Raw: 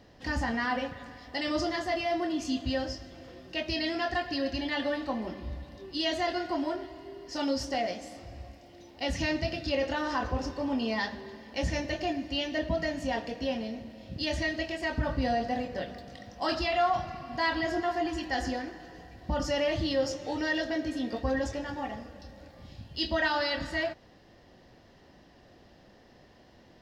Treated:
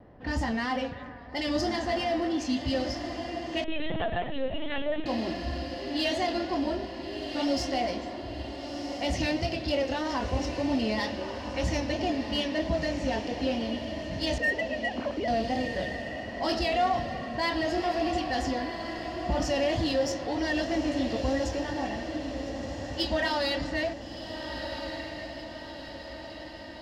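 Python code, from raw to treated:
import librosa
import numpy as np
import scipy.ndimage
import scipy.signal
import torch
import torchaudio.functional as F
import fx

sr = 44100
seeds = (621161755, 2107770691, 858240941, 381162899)

p1 = fx.sine_speech(x, sr, at=(14.38, 15.28))
p2 = fx.env_lowpass(p1, sr, base_hz=1200.0, full_db=-25.5)
p3 = fx.dynamic_eq(p2, sr, hz=1400.0, q=1.5, threshold_db=-47.0, ratio=4.0, max_db=-7)
p4 = 10.0 ** (-34.0 / 20.0) * np.tanh(p3 / 10.0 ** (-34.0 / 20.0))
p5 = p3 + (p4 * librosa.db_to_amplitude(-4.5))
p6 = fx.vibrato(p5, sr, rate_hz=3.1, depth_cents=57.0)
p7 = p6 + fx.echo_diffused(p6, sr, ms=1372, feedback_pct=57, wet_db=-7.5, dry=0)
y = fx.lpc_vocoder(p7, sr, seeds[0], excitation='pitch_kept', order=10, at=(3.64, 5.06))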